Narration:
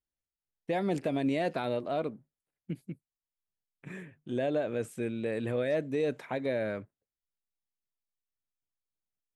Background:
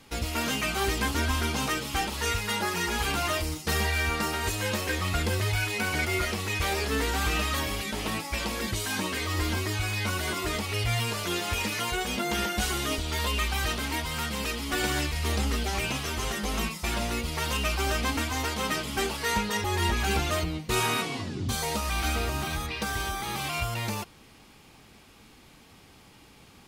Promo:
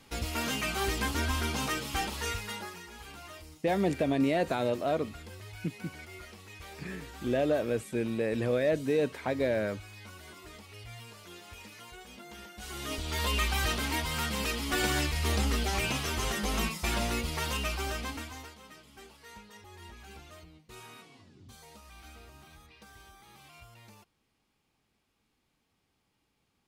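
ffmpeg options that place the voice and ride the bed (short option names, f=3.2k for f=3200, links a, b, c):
-filter_complex "[0:a]adelay=2950,volume=2.5dB[a];[1:a]volume=14.5dB,afade=t=out:st=2.07:d=0.76:silence=0.16788,afade=t=in:st=12.58:d=0.76:silence=0.125893,afade=t=out:st=17.07:d=1.52:silence=0.0794328[b];[a][b]amix=inputs=2:normalize=0"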